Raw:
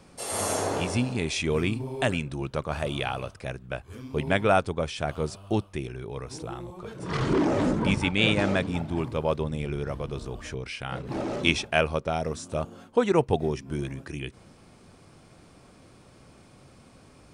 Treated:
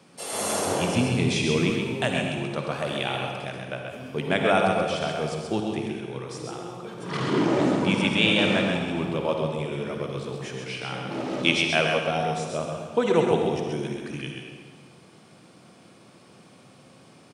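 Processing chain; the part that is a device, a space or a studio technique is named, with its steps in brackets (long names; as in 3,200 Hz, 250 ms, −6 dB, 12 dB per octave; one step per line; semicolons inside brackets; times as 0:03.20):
PA in a hall (high-pass filter 130 Hz 24 dB per octave; parametric band 3,100 Hz +3.5 dB 0.77 octaves; single-tap delay 132 ms −5 dB; convolution reverb RT60 1.7 s, pre-delay 47 ms, DRR 3 dB)
0:00.67–0:01.70: low-shelf EQ 180 Hz +9 dB
level −1 dB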